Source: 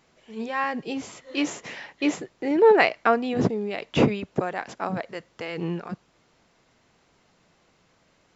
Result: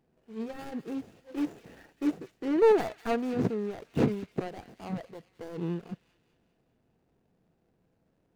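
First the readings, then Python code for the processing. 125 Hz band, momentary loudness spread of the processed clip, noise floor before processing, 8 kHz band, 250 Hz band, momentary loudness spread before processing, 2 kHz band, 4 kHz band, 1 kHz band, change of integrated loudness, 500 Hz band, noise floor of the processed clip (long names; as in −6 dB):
−4.5 dB, 19 LU, −64 dBFS, can't be measured, −4.5 dB, 17 LU, −15.0 dB, −13.5 dB, −10.5 dB, −6.0 dB, −5.5 dB, −73 dBFS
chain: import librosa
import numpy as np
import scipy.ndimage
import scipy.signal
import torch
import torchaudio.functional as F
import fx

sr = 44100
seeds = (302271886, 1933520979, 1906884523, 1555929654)

p1 = scipy.ndimage.median_filter(x, 41, mode='constant')
p2 = fx.hpss(p1, sr, part='percussive', gain_db=-3)
p3 = fx.notch(p2, sr, hz=580.0, q=12.0)
p4 = p3 + fx.echo_wet_highpass(p3, sr, ms=201, feedback_pct=55, hz=2100.0, wet_db=-13, dry=0)
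y = F.gain(torch.from_numpy(p4), -3.0).numpy()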